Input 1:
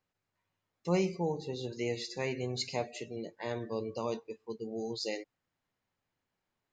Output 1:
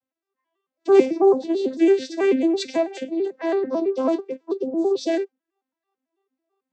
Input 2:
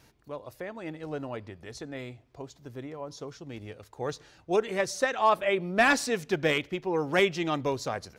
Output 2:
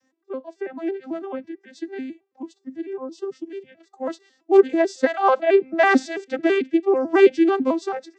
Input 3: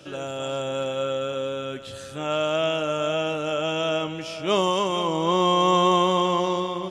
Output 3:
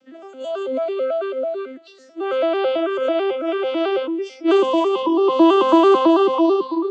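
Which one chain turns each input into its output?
vocoder with an arpeggio as carrier major triad, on C4, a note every 110 ms
noise reduction from a noise print of the clip's start 14 dB
normalise the peak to −3 dBFS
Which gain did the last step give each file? +16.0, +9.5, +7.0 decibels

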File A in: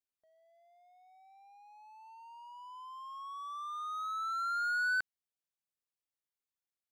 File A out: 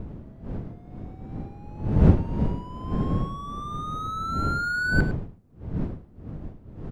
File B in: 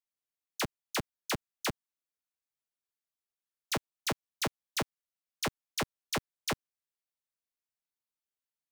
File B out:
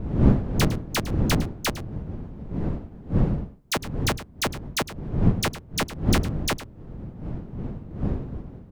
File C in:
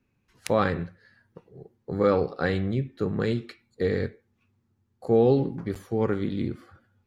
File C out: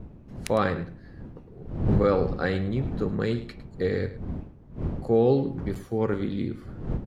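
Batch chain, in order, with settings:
wind on the microphone 180 Hz −33 dBFS
single-tap delay 106 ms −14.5 dB
loudness normalisation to −27 LKFS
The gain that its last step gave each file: +5.5, +6.5, −1.0 decibels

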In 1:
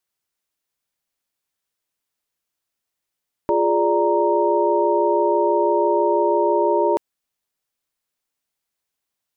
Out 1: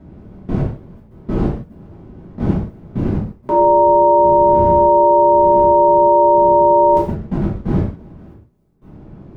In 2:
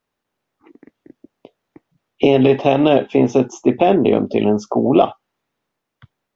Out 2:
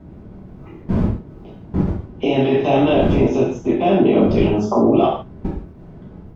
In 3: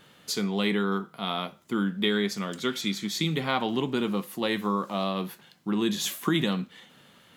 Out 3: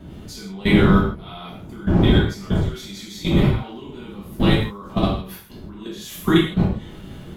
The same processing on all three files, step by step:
wind on the microphone 200 Hz −27 dBFS
output level in coarse steps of 23 dB
reverb whose tail is shaped and stops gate 190 ms falling, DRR −7.5 dB
normalise the peak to −2 dBFS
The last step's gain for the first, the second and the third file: +1.5, +1.0, +2.5 decibels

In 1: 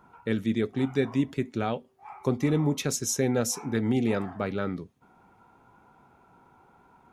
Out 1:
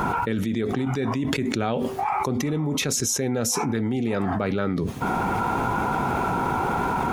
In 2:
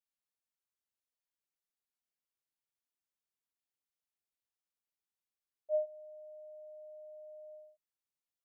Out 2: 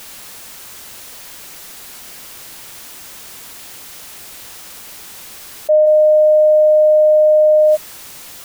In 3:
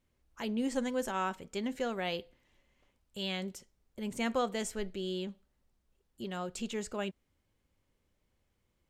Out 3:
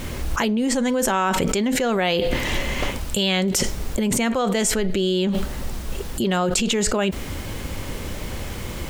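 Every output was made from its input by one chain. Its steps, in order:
envelope flattener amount 100%
normalise the peak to −6 dBFS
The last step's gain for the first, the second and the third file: −3.5, +18.5, +7.0 decibels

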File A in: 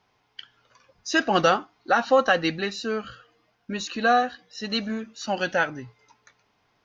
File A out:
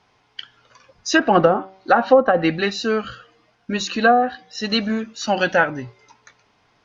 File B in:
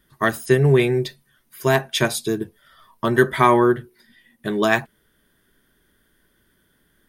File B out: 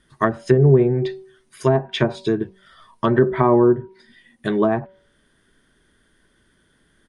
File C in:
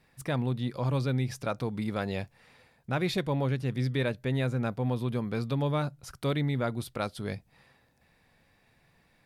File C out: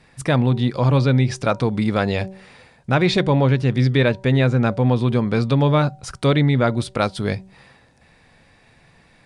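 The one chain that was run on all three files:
downsampling to 22,050 Hz
hum removal 190.5 Hz, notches 5
treble cut that deepens with the level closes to 670 Hz, closed at −14.5 dBFS
loudness normalisation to −19 LKFS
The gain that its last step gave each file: +7.5, +3.0, +12.0 decibels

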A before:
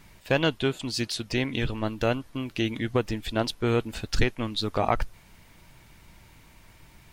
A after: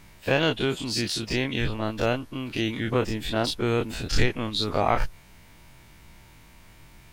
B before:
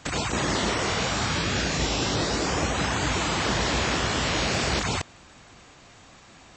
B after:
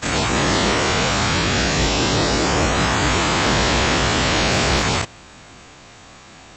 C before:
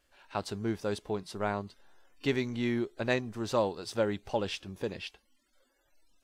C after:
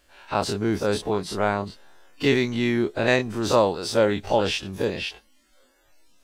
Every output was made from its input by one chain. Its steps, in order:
every bin's largest magnitude spread in time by 60 ms
normalise the peak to −6 dBFS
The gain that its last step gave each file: −2.0, +3.5, +6.5 decibels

